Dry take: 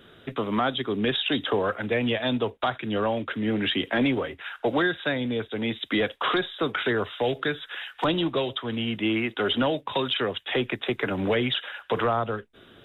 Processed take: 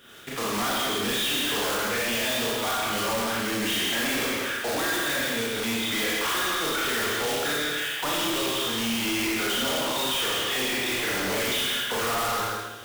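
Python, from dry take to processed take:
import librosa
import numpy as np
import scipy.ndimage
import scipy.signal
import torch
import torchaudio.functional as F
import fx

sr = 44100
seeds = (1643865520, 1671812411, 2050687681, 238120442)

y = fx.block_float(x, sr, bits=3)
y = fx.tilt_shelf(y, sr, db=-5.0, hz=730.0)
y = y + 10.0 ** (-8.0 / 20.0) * np.pad(y, (int(162 * sr / 1000.0), 0))[:len(y)]
y = fx.rev_schroeder(y, sr, rt60_s=0.99, comb_ms=27, drr_db=-6.0)
y = np.clip(10.0 ** (20.5 / 20.0) * y, -1.0, 1.0) / 10.0 ** (20.5 / 20.0)
y = y * librosa.db_to_amplitude(-4.0)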